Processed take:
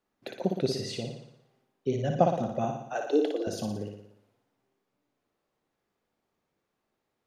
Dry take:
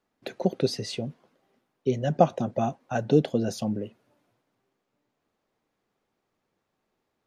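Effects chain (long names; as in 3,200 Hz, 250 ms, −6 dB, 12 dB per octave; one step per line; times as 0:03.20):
0:02.79–0:03.47: Butterworth high-pass 280 Hz 96 dB per octave
flutter between parallel walls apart 10 metres, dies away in 0.72 s
level −4 dB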